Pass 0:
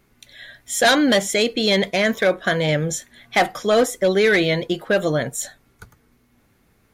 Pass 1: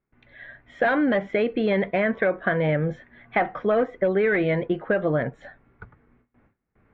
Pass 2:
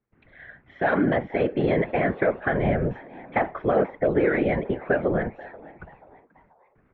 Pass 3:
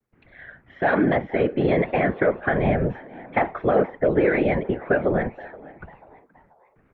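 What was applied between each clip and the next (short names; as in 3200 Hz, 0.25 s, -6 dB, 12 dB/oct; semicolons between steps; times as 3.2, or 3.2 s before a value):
LPF 2100 Hz 24 dB/oct; gate with hold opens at -50 dBFS; compressor, threshold -18 dBFS, peak gain reduction 6 dB
whisperiser; air absorption 240 m; frequency-shifting echo 0.484 s, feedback 41%, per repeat +120 Hz, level -21 dB
vibrato 1.2 Hz 75 cents; gain +2 dB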